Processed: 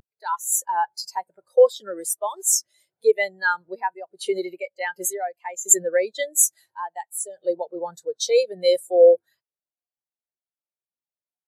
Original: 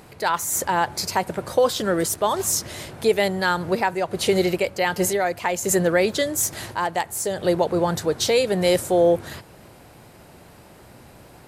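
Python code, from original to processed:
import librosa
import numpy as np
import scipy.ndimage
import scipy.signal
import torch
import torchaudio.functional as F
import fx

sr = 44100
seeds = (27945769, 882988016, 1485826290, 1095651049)

y = fx.tilt_eq(x, sr, slope=3.5)
y = fx.spectral_expand(y, sr, expansion=2.5)
y = y * 10.0 ** (-3.0 / 20.0)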